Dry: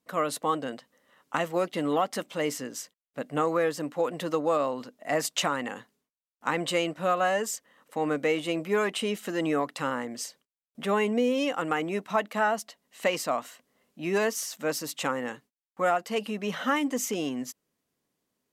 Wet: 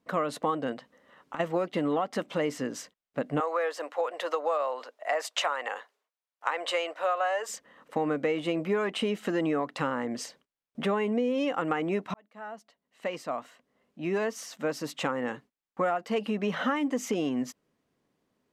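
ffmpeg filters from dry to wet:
ffmpeg -i in.wav -filter_complex "[0:a]asplit=3[link_01][link_02][link_03];[link_01]afade=type=out:start_time=0.72:duration=0.02[link_04];[link_02]acompressor=threshold=-40dB:ratio=6:attack=3.2:release=140:knee=1:detection=peak,afade=type=in:start_time=0.72:duration=0.02,afade=type=out:start_time=1.39:duration=0.02[link_05];[link_03]afade=type=in:start_time=1.39:duration=0.02[link_06];[link_04][link_05][link_06]amix=inputs=3:normalize=0,asettb=1/sr,asplit=3[link_07][link_08][link_09];[link_07]atrim=end=3.404[link_10];[link_08]atrim=start=3.4:end=7.49,asetpts=PTS-STARTPTS,afade=type=in:duration=0.004:curve=qsin,afade=type=out:start_time=4.086:duration=0.004:curve=qsin,highpass=frequency=530:width=0.5412,highpass=frequency=530:width=1.3066[link_11];[link_09]atrim=start=7.486[link_12];[link_10][link_11]acrossfade=duration=0.004:curve1=hsin:curve2=qsin[link_13];[link_13][link_12]acrossfade=duration=0.004:curve1=qsin:curve2=hsin,asplit=2[link_14][link_15];[link_14]atrim=end=12.14,asetpts=PTS-STARTPTS,afade=type=out:start_time=12.136:duration=0.004:curve=hsin[link_16];[link_15]atrim=start=12.14,asetpts=PTS-STARTPTS,afade=type=in:duration=3.73[link_17];[link_16][link_17]concat=n=2:v=0:a=1,aemphasis=mode=reproduction:type=75kf,acompressor=threshold=-32dB:ratio=4,volume=6.5dB" out.wav

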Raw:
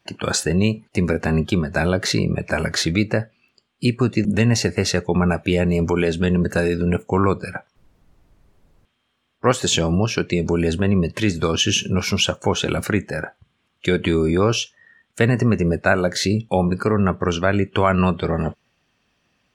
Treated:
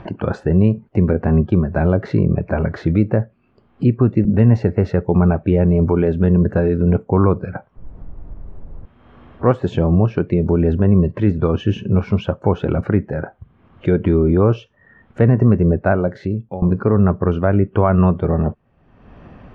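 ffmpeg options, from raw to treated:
ffmpeg -i in.wav -filter_complex "[0:a]asplit=2[link_01][link_02];[link_01]atrim=end=16.62,asetpts=PTS-STARTPTS,afade=type=out:start_time=15.89:duration=0.73:silence=0.1[link_03];[link_02]atrim=start=16.62,asetpts=PTS-STARTPTS,afade=type=in:duration=0.004:curve=hsin:silence=0.1[link_04];[link_03][link_04]concat=n=2:v=0:a=1,lowshelf=frequency=87:gain=10,acompressor=mode=upward:threshold=-20dB:ratio=2.5,lowpass=1000,volume=2.5dB" out.wav

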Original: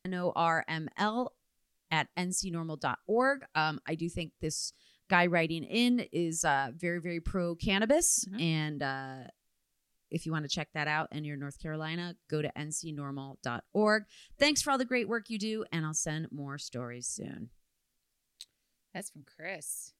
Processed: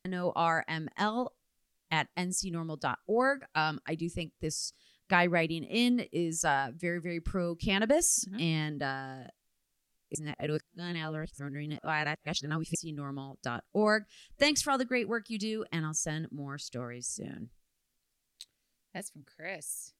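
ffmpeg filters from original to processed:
ffmpeg -i in.wav -filter_complex "[0:a]asplit=3[link_01][link_02][link_03];[link_01]atrim=end=10.152[link_04];[link_02]atrim=start=10.148:end=12.752,asetpts=PTS-STARTPTS,areverse[link_05];[link_03]atrim=start=12.748[link_06];[link_04][link_05]acrossfade=duration=0.004:curve1=hsin:curve2=hsin[link_07];[link_07][link_06]acrossfade=duration=0.004:curve1=hsin:curve2=hsin" out.wav

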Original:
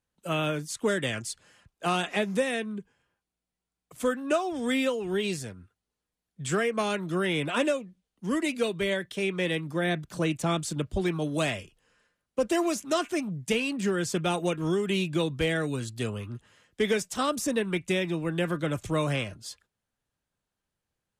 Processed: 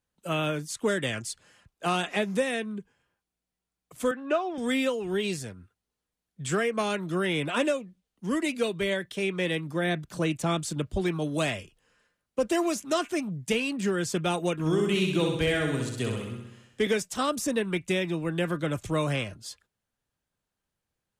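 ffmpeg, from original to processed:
ffmpeg -i in.wav -filter_complex "[0:a]asettb=1/sr,asplit=3[link_01][link_02][link_03];[link_01]atrim=end=4.114[link_04];[link_02]atrim=start=4.11:end=4.58,asetpts=PTS-STARTPTS,afade=type=in:duration=0.004:curve=qsin,afade=type=out:start_time=0.466:duration=0.004:curve=qsin,highpass=280,lowpass=3200[link_05];[link_03]atrim=start=4.576[link_06];[link_04][link_05]acrossfade=duration=0.004:curve1=hsin:curve2=qsin[link_07];[link_07][link_06]acrossfade=duration=0.004:curve1=qsin:curve2=hsin,asettb=1/sr,asplit=3[link_08][link_09][link_10];[link_08]atrim=end=14.534[link_11];[link_09]atrim=start=14.53:end=16.87,asetpts=PTS-STARTPTS,afade=type=in:duration=0.004:curve=qsin,afade=type=out:start_time=2.336:duration=0.004:curve=qsin,aecho=1:1:64|128|192|256|320|384|448|512:0.631|0.366|0.212|0.123|0.0714|0.0414|0.024|0.0139,atrim=end_sample=103194[link_12];[link_10]atrim=start=16.866[link_13];[link_11][link_12]acrossfade=duration=0.004:curve1=hsin:curve2=qsin[link_14];[link_14][link_13]acrossfade=duration=0.004:curve1=qsin:curve2=hsin" out.wav

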